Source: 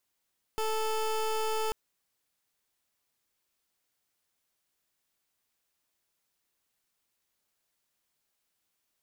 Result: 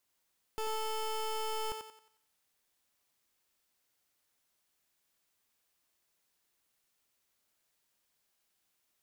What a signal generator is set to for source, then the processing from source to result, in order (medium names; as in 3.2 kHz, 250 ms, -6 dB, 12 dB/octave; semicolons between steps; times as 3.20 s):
pulse 438 Hz, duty 22% -30 dBFS 1.14 s
peak limiter -35 dBFS; on a send: thinning echo 90 ms, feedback 40%, high-pass 290 Hz, level -5 dB